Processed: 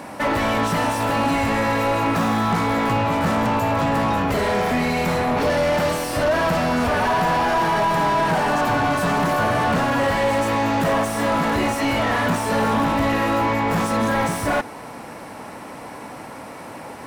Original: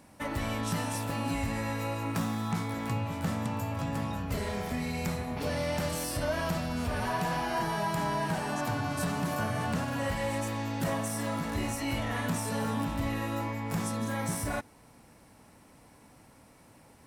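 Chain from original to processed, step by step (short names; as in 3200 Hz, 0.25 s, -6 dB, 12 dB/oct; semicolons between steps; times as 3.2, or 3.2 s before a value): high shelf 11000 Hz +8.5 dB; overdrive pedal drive 27 dB, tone 1100 Hz, clips at -18.5 dBFS; gain +8 dB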